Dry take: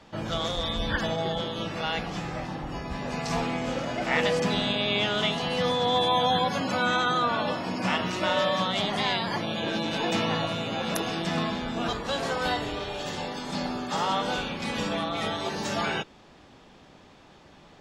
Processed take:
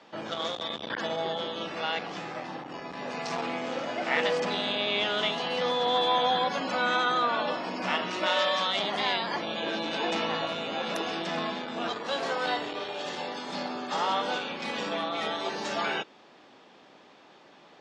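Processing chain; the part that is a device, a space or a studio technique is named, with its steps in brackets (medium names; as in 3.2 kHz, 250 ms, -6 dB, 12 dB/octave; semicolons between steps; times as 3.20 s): public-address speaker with an overloaded transformer (transformer saturation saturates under 900 Hz; band-pass 290–5700 Hz); 8.26–8.76 s: tilt EQ +2 dB/octave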